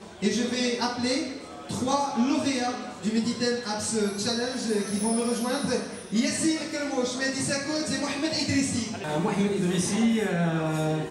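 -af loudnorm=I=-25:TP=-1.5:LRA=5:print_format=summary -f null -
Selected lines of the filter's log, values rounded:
Input Integrated:    -26.6 LUFS
Input True Peak:     -10.8 dBTP
Input LRA:             1.3 LU
Input Threshold:     -36.6 LUFS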